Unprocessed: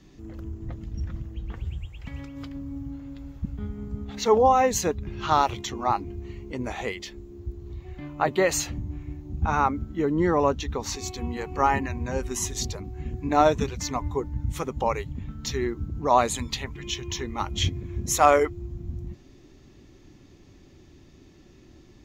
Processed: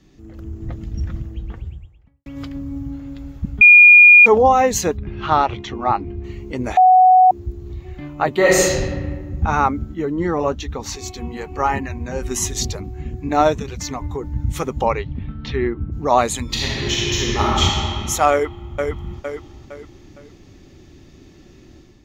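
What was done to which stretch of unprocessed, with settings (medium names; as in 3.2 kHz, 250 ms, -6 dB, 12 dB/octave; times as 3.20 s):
1.11–2.26 s: studio fade out
3.61–4.26 s: bleep 2.43 kHz -9 dBFS
4.97–6.24 s: low-pass 3.1 kHz
6.77–7.31 s: bleep 742 Hz -13.5 dBFS
8.36–8.88 s: reverb throw, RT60 1.4 s, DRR -4.5 dB
9.94–12.22 s: flange 1.1 Hz, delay 0.2 ms, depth 6.1 ms, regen -66%
13.58–14.35 s: compression, threshold -26 dBFS
14.85–15.91 s: low-pass 5.2 kHz -> 2.6 kHz 24 dB/octave
16.44–17.63 s: reverb throw, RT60 2.8 s, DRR -6 dB
18.32–18.73 s: echo throw 460 ms, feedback 35%, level -4.5 dB
whole clip: band-stop 1 kHz, Q 18; level rider gain up to 7 dB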